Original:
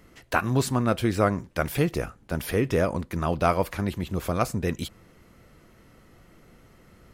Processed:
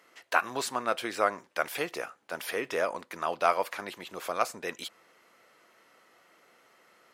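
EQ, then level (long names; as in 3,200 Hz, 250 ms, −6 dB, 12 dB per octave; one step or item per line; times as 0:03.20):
high-pass filter 640 Hz 12 dB per octave
high-shelf EQ 9,200 Hz −7 dB
0.0 dB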